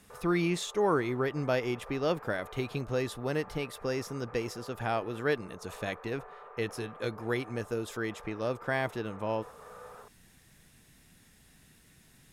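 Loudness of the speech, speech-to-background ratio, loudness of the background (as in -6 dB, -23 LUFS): -33.5 LUFS, 16.5 dB, -50.0 LUFS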